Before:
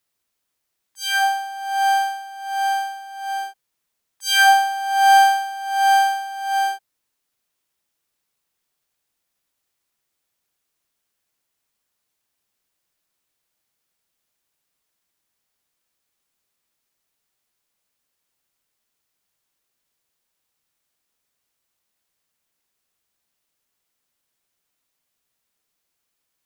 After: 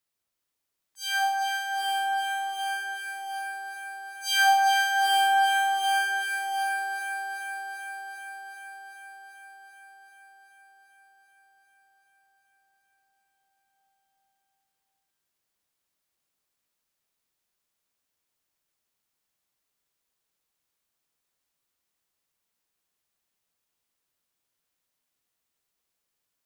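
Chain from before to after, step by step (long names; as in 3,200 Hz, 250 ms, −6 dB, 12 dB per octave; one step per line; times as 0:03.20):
delay that swaps between a low-pass and a high-pass 194 ms, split 1,400 Hz, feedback 86%, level −3 dB
level −7 dB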